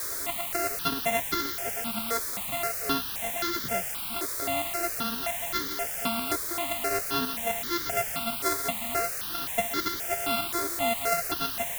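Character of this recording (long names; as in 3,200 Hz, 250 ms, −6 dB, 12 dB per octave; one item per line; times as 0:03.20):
a buzz of ramps at a fixed pitch in blocks of 64 samples
chopped level 3.8 Hz, depth 60%, duty 55%
a quantiser's noise floor 6 bits, dither triangular
notches that jump at a steady rate 3.8 Hz 770–2,600 Hz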